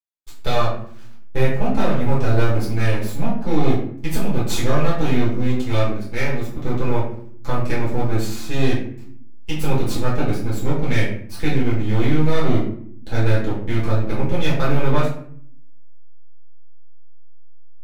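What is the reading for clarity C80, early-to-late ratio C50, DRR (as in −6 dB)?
8.0 dB, 4.0 dB, −9.0 dB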